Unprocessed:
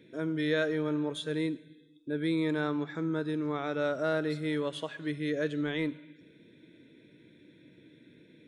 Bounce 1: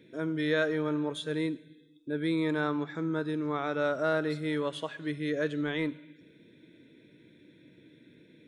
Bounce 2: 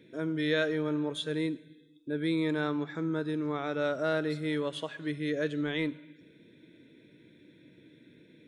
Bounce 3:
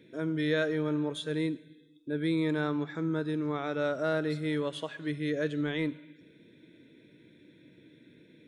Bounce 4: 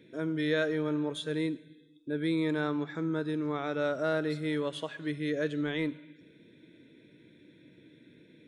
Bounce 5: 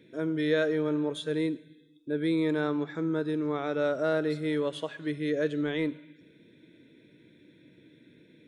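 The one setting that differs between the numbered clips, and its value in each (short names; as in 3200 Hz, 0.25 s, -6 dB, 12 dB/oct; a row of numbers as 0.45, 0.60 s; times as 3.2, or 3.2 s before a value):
dynamic EQ, frequency: 1100, 3100, 110, 8600, 450 Hz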